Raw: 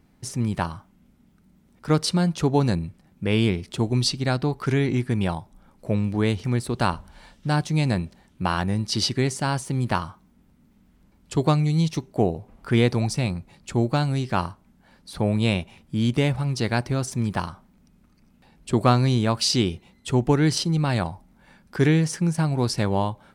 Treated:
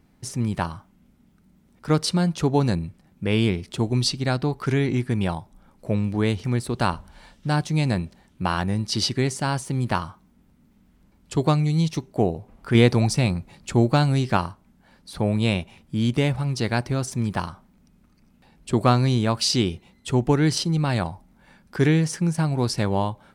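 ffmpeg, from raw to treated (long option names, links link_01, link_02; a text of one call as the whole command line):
ffmpeg -i in.wav -filter_complex "[0:a]asplit=3[link_01][link_02][link_03];[link_01]atrim=end=12.752[link_04];[link_02]atrim=start=12.748:end=14.372,asetpts=PTS-STARTPTS,volume=3.5dB[link_05];[link_03]atrim=start=14.368[link_06];[link_04][link_05]acrossfade=duration=0.004:curve1=hsin:curve2=hsin[link_07];[link_07][link_06]acrossfade=duration=0.004:curve1=hsin:curve2=hsin" out.wav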